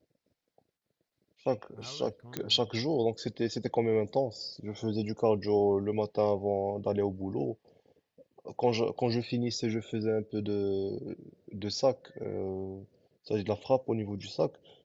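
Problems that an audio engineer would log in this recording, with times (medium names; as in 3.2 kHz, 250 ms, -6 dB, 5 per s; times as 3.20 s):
2.37 s: pop -17 dBFS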